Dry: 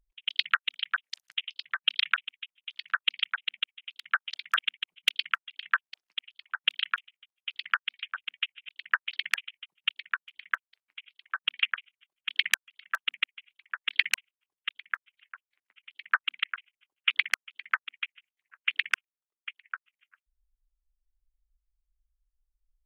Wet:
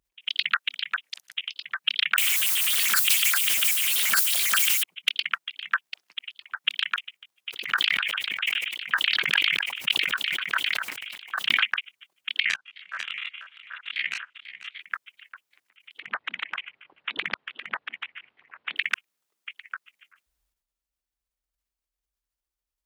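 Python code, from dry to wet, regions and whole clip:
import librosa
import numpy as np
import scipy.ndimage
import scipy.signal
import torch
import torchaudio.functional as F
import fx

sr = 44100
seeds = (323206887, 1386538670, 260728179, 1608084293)

y = fx.chain(x, sr, fx.crossing_spikes(level_db=-20.0),
    fx.band_squash(depth_pct=70), at=(2.18, 4.83))
y = fx.chain(y, sr, fx.echo_single(ms=250, db=-10.5),
    fx.sustainer(db_per_s=52.0), at=(7.5, 11.63))
y = fx.chain(y, sr, fx.spec_steps(hold_ms=50),
    fx.lowpass(hz=5200.0, slope=12),
    fx.echo_single(ms=492, db=-14.0), at=(12.4, 14.81))
y = fx.chain(y, sr, fx.gaussian_blur(sigma=3.4),
    fx.spectral_comp(ratio=2.0), at=(15.98, 18.76))
y = scipy.signal.sosfilt(scipy.signal.butter(2, 110.0, 'highpass', fs=sr, output='sos'), y)
y = fx.transient(y, sr, attack_db=-4, sustain_db=11)
y = F.gain(torch.from_numpy(y), 4.0).numpy()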